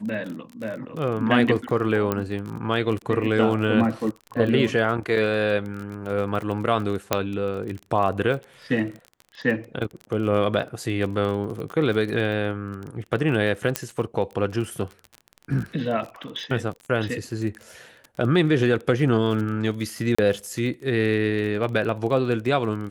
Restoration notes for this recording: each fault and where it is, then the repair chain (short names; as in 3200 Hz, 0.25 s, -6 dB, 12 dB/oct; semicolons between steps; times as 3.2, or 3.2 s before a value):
crackle 26/s -30 dBFS
2.12 pop -10 dBFS
7.13 pop -4 dBFS
13.76 pop -5 dBFS
20.15–20.18 gap 35 ms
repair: de-click; interpolate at 20.15, 35 ms